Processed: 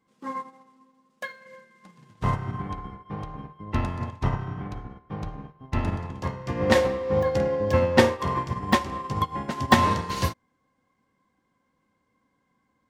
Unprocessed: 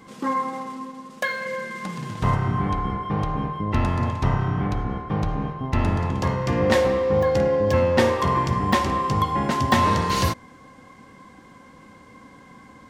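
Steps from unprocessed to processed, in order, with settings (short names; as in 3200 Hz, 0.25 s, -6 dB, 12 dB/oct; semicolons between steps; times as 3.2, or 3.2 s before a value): upward expander 2.5:1, over -33 dBFS; gain +3.5 dB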